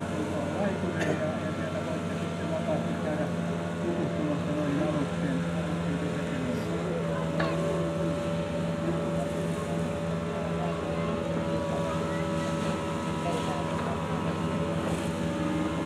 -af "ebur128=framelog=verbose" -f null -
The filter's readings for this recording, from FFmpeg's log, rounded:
Integrated loudness:
  I:         -30.1 LUFS
  Threshold: -40.1 LUFS
Loudness range:
  LRA:         0.8 LU
  Threshold: -50.1 LUFS
  LRA low:   -30.5 LUFS
  LRA high:  -29.7 LUFS